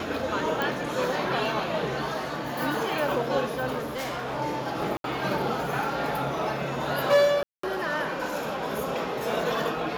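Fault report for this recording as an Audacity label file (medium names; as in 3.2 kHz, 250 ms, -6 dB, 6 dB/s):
0.620000	0.620000	pop
3.780000	4.370000	clipped -28 dBFS
4.970000	5.040000	dropout 72 ms
7.430000	7.630000	dropout 204 ms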